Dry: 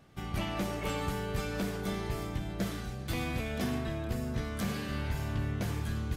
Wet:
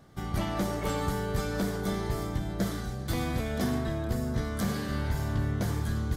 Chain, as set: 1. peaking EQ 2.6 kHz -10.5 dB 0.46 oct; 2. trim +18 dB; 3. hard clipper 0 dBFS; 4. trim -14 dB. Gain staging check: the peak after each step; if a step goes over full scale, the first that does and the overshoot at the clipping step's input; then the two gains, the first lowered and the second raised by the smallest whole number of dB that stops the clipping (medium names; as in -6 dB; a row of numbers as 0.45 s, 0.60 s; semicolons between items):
-22.0 dBFS, -4.0 dBFS, -4.0 dBFS, -18.0 dBFS; nothing clips